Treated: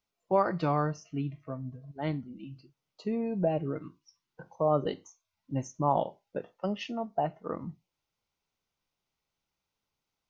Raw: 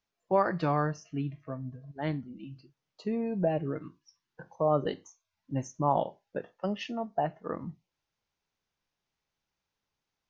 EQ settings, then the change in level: notch 1700 Hz, Q 6.4; 0.0 dB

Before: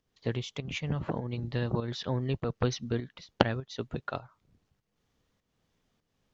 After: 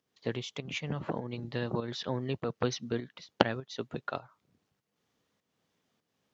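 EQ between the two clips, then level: Bessel high-pass 180 Hz, order 2; 0.0 dB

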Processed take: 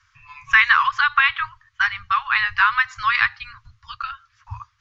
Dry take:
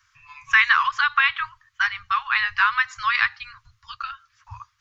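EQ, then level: air absorption 64 m; bell 240 Hz +8.5 dB 0.37 oct; low shelf 360 Hz +5 dB; +2.5 dB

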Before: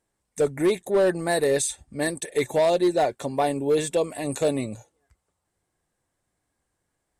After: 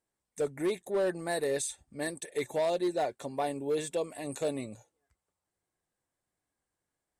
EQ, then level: low shelf 130 Hz -5.5 dB; -8.5 dB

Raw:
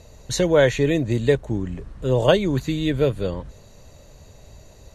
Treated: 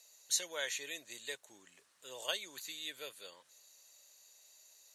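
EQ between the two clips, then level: HPF 600 Hz 6 dB/oct; differentiator; -2.5 dB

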